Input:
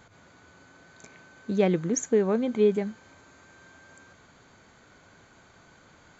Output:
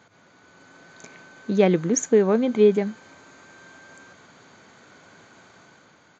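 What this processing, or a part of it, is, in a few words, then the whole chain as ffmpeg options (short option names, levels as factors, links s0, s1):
Bluetooth headset: -af "highpass=140,dynaudnorm=f=110:g=11:m=1.88,aresample=16000,aresample=44100" -ar 16000 -c:a sbc -b:a 64k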